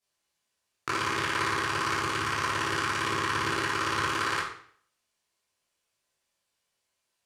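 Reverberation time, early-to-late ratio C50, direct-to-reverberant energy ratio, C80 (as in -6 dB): 0.55 s, 3.5 dB, -9.0 dB, 7.0 dB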